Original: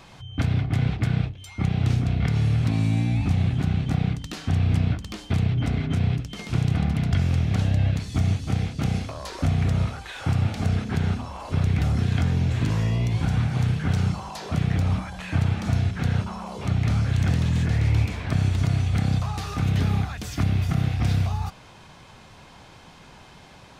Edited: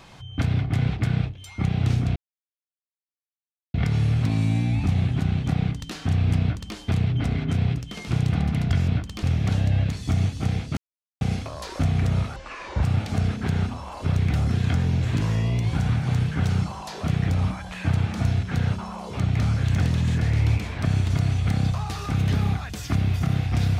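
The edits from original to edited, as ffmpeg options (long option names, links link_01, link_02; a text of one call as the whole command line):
ffmpeg -i in.wav -filter_complex "[0:a]asplit=7[link_01][link_02][link_03][link_04][link_05][link_06][link_07];[link_01]atrim=end=2.16,asetpts=PTS-STARTPTS,afade=type=out:start_time=2.156:duration=0.004:curve=hsin,apad=pad_dur=1.58[link_08];[link_02]atrim=start=2.16:end=7.302,asetpts=PTS-STARTPTS,afade=type=in:duration=0.004:curve=hsin[link_09];[link_03]atrim=start=4.828:end=5.182[link_10];[link_04]atrim=start=7.298:end=8.84,asetpts=PTS-STARTPTS,afade=type=out:start_time=1.538:duration=0.004:curve=hsin,apad=pad_dur=0.44[link_11];[link_05]atrim=start=8.84:end=9.994,asetpts=PTS-STARTPTS,afade=type=in:duration=0.004:curve=hsin[link_12];[link_06]atrim=start=9.99:end=10.31,asetpts=PTS-STARTPTS,asetrate=29988,aresample=44100[link_13];[link_07]atrim=start=10.306[link_14];[link_08][link_09]concat=n=2:v=0:a=1[link_15];[link_15][link_10]acrossfade=duration=0.004:curve1=hsin:curve2=hsin[link_16];[link_11][link_12]concat=n=2:v=0:a=1[link_17];[link_16][link_17]acrossfade=duration=0.004:curve1=hsin:curve2=hsin[link_18];[link_18][link_13]acrossfade=duration=0.004:curve1=hsin:curve2=hsin[link_19];[link_19][link_14]acrossfade=duration=0.004:curve1=hsin:curve2=hsin" out.wav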